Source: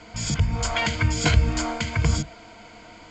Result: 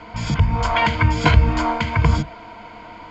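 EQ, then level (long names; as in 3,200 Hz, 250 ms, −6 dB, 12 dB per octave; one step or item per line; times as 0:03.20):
low-pass filter 3,200 Hz 12 dB per octave
parametric band 980 Hz +9.5 dB 0.32 octaves
+5.0 dB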